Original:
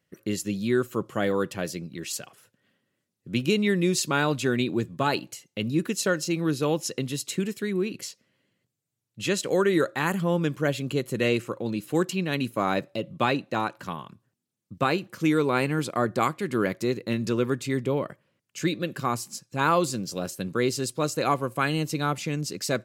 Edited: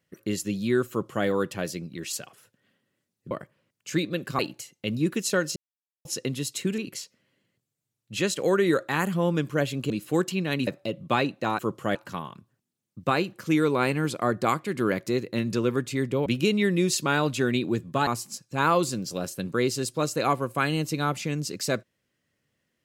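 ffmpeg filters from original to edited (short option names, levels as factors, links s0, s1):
-filter_complex "[0:a]asplit=12[s0][s1][s2][s3][s4][s5][s6][s7][s8][s9][s10][s11];[s0]atrim=end=3.312[s12];[s1]atrim=start=17.998:end=19.082[s13];[s2]atrim=start=5.118:end=6.29,asetpts=PTS-STARTPTS,afade=t=out:st=1.168:d=0.004:c=hsin[s14];[s3]atrim=start=6.29:end=6.78,asetpts=PTS-STARTPTS,volume=0[s15];[s4]atrim=start=6.78:end=7.512,asetpts=PTS-STARTPTS,afade=t=in:d=0.004:c=hsin[s16];[s5]atrim=start=7.848:end=10.972[s17];[s6]atrim=start=11.708:end=12.482[s18];[s7]atrim=start=12.768:end=13.692[s19];[s8]atrim=start=0.898:end=1.262[s20];[s9]atrim=start=13.688:end=18.002[s21];[s10]atrim=start=3.308:end=5.122[s22];[s11]atrim=start=19.078[s23];[s12][s13]acrossfade=d=0.004:c1=hsin:c2=hsin[s24];[s14][s15][s16]concat=n=3:v=0:a=1[s25];[s24][s25]acrossfade=d=0.004:c1=hsin:c2=hsin[s26];[s26][s17]acrossfade=d=0.004:c1=hsin:c2=hsin[s27];[s27][s18]acrossfade=d=0.004:c1=hsin:c2=hsin[s28];[s28][s19]acrossfade=d=0.004:c1=hsin:c2=hsin[s29];[s29][s20]acrossfade=d=0.004:c1=hsin:c2=hsin[s30];[s30][s21]acrossfade=d=0.004:c1=hsin:c2=hsin[s31];[s31][s22]acrossfade=d=0.004:c1=hsin:c2=hsin[s32];[s32][s23]acrossfade=d=0.004:c1=hsin:c2=hsin"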